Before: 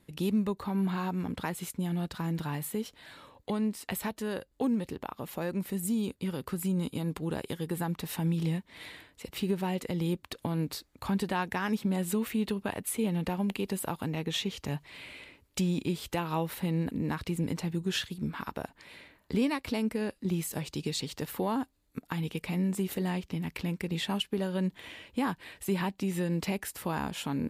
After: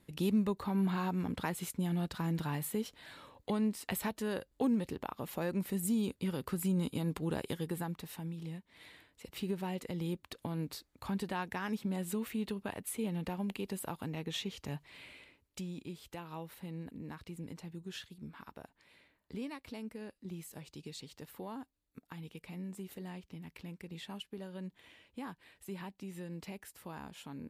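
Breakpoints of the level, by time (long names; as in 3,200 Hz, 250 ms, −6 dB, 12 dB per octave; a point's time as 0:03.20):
0:07.56 −2 dB
0:08.37 −13.5 dB
0:09.37 −6.5 dB
0:15.05 −6.5 dB
0:15.69 −13.5 dB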